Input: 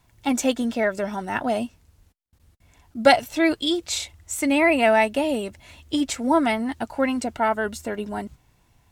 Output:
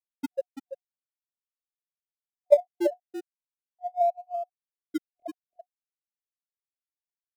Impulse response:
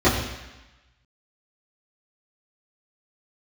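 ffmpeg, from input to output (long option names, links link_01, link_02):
-filter_complex "[0:a]afftfilt=real='re*gte(hypot(re,im),1.41)':imag='im*gte(hypot(re,im),1.41)':win_size=1024:overlap=0.75,asetrate=38170,aresample=44100,atempo=1.15535,aecho=1:1:405:0.355,afftfilt=real='re*(1-between(b*sr/4096,600,1700))':imag='im*(1-between(b*sr/4096,600,1700))':win_size=4096:overlap=0.75,acrossover=split=230|1700[link_01][link_02][link_03];[link_01]acrusher=samples=38:mix=1:aa=0.000001:lfo=1:lforange=22.8:lforate=0.31[link_04];[link_04][link_02][link_03]amix=inputs=3:normalize=0,asetrate=53361,aresample=44100"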